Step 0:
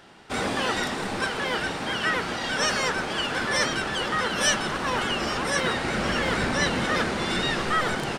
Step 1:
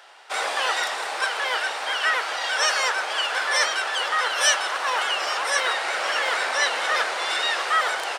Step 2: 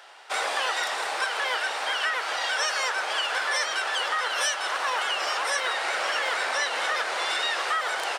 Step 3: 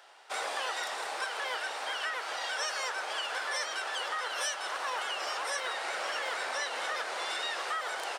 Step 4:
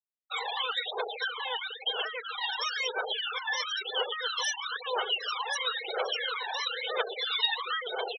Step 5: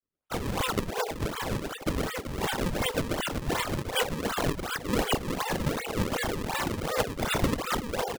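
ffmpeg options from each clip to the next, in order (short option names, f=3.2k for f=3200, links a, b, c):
-af "highpass=f=580:w=0.5412,highpass=f=580:w=1.3066,volume=3.5dB"
-af "acompressor=threshold=-23dB:ratio=6"
-af "equalizer=f=2.2k:w=0.54:g=-3,volume=-5.5dB"
-af "aphaser=in_gain=1:out_gain=1:delay=1.2:decay=0.57:speed=1:type=triangular,superequalizer=7b=2.51:12b=1.58:13b=2.51,afftfilt=real='re*gte(hypot(re,im),0.0562)':imag='im*gte(hypot(re,im),0.0562)':win_size=1024:overlap=0.75"
-af "acrusher=samples=35:mix=1:aa=0.000001:lfo=1:lforange=56:lforate=2.7,volume=3dB"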